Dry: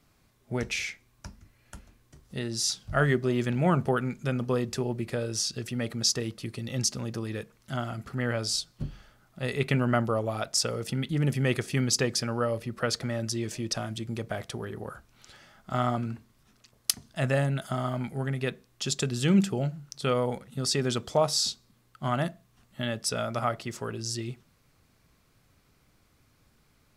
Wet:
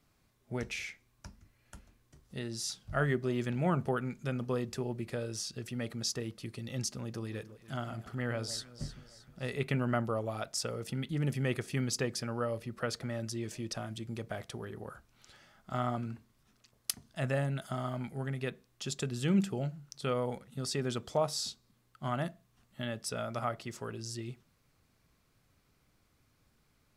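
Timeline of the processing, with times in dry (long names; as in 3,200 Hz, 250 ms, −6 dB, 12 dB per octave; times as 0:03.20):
0:07.02–0:09.59: delay that swaps between a low-pass and a high-pass 155 ms, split 980 Hz, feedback 68%, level −13 dB
whole clip: dynamic equaliser 5,300 Hz, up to −4 dB, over −40 dBFS, Q 0.76; level −6 dB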